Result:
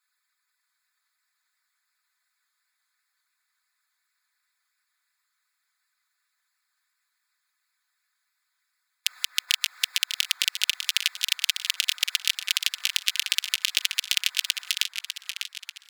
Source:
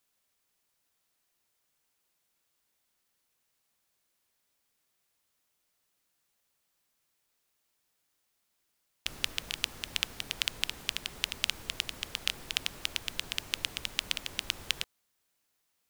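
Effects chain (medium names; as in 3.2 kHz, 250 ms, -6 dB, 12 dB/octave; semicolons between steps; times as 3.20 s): local Wiener filter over 15 samples; high-pass 1.5 kHz 24 dB/octave; dynamic bell 9.4 kHz, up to -4 dB, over -55 dBFS, Q 0.95; harmonic-percussive split harmonic -16 dB; treble shelf 6.3 kHz +6.5 dB; comb 4 ms, depth 67%; compression, threshold -29 dBFS, peak gain reduction 9 dB; loudness maximiser +19.5 dB; modulated delay 593 ms, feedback 52%, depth 192 cents, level -8 dB; trim -1 dB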